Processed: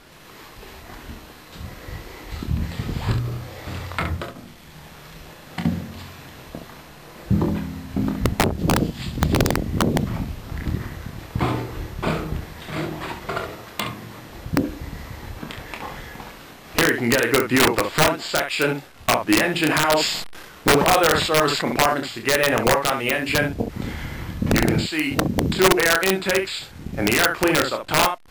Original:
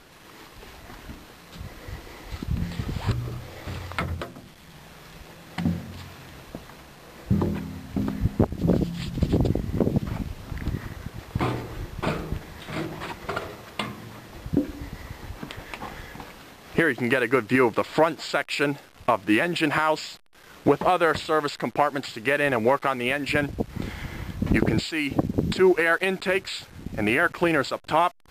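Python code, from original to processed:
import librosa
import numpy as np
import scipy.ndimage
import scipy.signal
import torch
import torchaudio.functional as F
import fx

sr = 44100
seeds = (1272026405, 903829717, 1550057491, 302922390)

y = fx.room_early_taps(x, sr, ms=(26, 39, 68), db=(-6.5, -13.5, -7.5))
y = (np.mod(10.0 ** (10.5 / 20.0) * y + 1.0, 2.0) - 1.0) / 10.0 ** (10.5 / 20.0)
y = fx.sustainer(y, sr, db_per_s=47.0, at=(19.67, 21.93), fade=0.02)
y = y * librosa.db_to_amplitude(2.0)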